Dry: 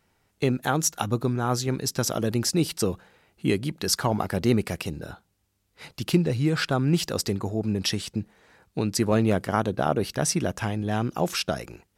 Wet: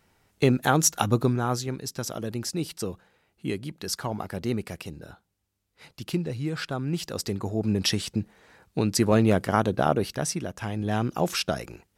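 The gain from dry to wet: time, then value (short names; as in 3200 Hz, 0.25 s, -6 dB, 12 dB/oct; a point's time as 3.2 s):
1.23 s +3 dB
1.8 s -6.5 dB
6.98 s -6.5 dB
7.71 s +1.5 dB
9.88 s +1.5 dB
10.52 s -7.5 dB
10.83 s 0 dB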